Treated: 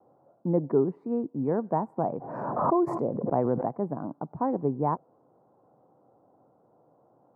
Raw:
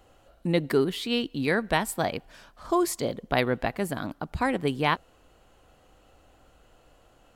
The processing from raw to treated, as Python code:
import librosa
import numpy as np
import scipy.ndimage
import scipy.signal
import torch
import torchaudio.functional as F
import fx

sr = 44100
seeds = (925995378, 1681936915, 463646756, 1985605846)

y = scipy.signal.sosfilt(scipy.signal.ellip(3, 1.0, 50, [130.0, 960.0], 'bandpass', fs=sr, output='sos'), x)
y = fx.vibrato(y, sr, rate_hz=0.57, depth_cents=17.0)
y = fx.pre_swell(y, sr, db_per_s=37.0, at=(1.97, 3.63), fade=0.02)